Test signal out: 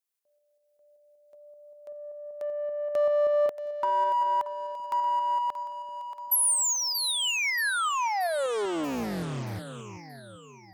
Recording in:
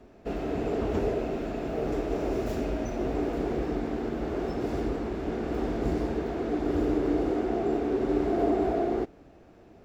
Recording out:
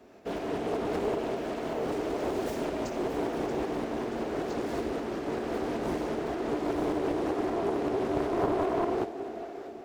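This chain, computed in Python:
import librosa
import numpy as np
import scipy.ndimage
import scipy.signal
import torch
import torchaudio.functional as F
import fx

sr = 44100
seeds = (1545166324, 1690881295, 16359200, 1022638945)

p1 = fx.highpass(x, sr, hz=300.0, slope=6)
p2 = fx.tremolo_shape(p1, sr, shape='saw_up', hz=5.2, depth_pct=35)
p3 = 10.0 ** (-34.5 / 20.0) * np.tanh(p2 / 10.0 ** (-34.5 / 20.0))
p4 = p2 + F.gain(torch.from_numpy(p3), -5.5).numpy()
p5 = fx.high_shelf(p4, sr, hz=6900.0, db=7.5)
p6 = p5 + fx.echo_split(p5, sr, split_hz=420.0, low_ms=386, high_ms=630, feedback_pct=52, wet_db=-11, dry=0)
p7 = fx.dynamic_eq(p6, sr, hz=4900.0, q=1.1, threshold_db=-45.0, ratio=4.0, max_db=-5)
y = fx.doppler_dist(p7, sr, depth_ms=0.7)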